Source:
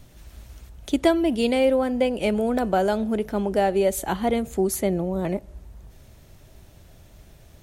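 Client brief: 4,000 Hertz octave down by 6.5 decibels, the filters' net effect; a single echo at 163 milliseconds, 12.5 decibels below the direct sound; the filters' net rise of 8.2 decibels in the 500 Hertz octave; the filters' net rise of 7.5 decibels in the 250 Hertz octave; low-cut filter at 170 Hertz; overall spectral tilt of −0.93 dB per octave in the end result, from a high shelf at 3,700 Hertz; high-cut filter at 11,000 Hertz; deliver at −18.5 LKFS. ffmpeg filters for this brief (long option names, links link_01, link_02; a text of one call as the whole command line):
ffmpeg -i in.wav -af "highpass=170,lowpass=11000,equalizer=frequency=250:width_type=o:gain=8,equalizer=frequency=500:width_type=o:gain=8,highshelf=frequency=3700:gain=-8,equalizer=frequency=4000:width_type=o:gain=-4.5,aecho=1:1:163:0.237,volume=-3dB" out.wav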